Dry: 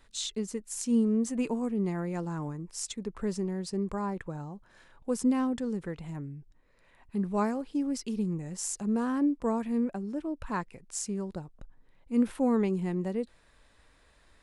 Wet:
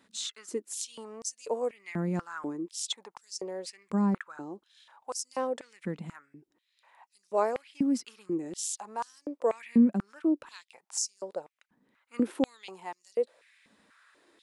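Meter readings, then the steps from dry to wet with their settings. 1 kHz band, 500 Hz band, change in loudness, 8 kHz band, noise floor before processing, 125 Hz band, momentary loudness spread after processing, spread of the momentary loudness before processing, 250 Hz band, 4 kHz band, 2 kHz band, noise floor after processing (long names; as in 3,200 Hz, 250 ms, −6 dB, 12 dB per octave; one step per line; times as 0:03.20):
+0.5 dB, +1.0 dB, −1.0 dB, +1.5 dB, −63 dBFS, −4.0 dB, 14 LU, 12 LU, −2.5 dB, +3.0 dB, 0.0 dB, −79 dBFS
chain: high-pass on a step sequencer 4.1 Hz 210–5,500 Hz
level −1.5 dB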